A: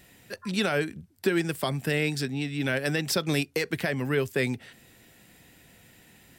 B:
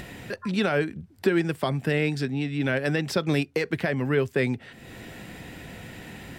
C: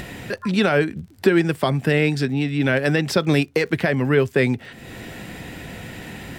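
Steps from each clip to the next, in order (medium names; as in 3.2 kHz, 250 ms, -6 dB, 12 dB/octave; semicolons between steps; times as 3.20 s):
upward compressor, threshold -29 dBFS; low-pass 2.2 kHz 6 dB/octave; trim +3 dB
crackle 41 per s -44 dBFS; trim +6 dB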